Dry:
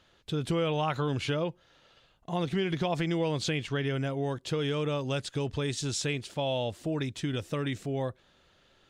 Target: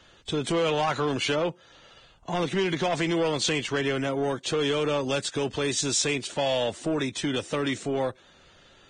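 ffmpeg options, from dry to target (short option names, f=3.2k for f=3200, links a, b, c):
-filter_complex "[0:a]acrossover=split=190|430|2600[a][b][c][d];[a]acompressor=threshold=-54dB:ratio=4[e];[e][b][c][d]amix=inputs=4:normalize=0,asoftclip=type=tanh:threshold=-27.5dB,volume=8dB" -ar 22050 -c:a libvorbis -b:a 16k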